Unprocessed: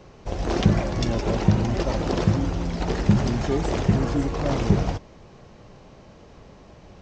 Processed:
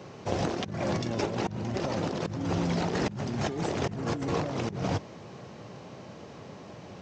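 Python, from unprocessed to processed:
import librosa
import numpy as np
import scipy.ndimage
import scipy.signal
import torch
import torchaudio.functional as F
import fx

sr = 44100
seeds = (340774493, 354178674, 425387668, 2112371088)

y = scipy.signal.sosfilt(scipy.signal.butter(4, 100.0, 'highpass', fs=sr, output='sos'), x)
y = fx.over_compress(y, sr, threshold_db=-30.0, ratio=-1.0)
y = y * 10.0 ** (-1.5 / 20.0)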